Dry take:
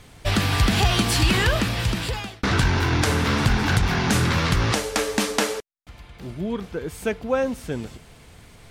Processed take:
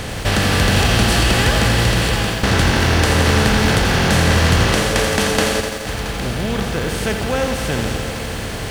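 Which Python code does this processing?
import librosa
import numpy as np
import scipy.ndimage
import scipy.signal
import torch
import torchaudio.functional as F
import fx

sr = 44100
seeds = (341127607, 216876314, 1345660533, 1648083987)

y = fx.bin_compress(x, sr, power=0.4)
y = y + 10.0 ** (-14.5 / 20.0) * np.pad(y, (int(674 * sr / 1000.0), 0))[:len(y)]
y = fx.echo_crushed(y, sr, ms=85, feedback_pct=80, bits=6, wet_db=-7.5)
y = y * librosa.db_to_amplitude(-2.0)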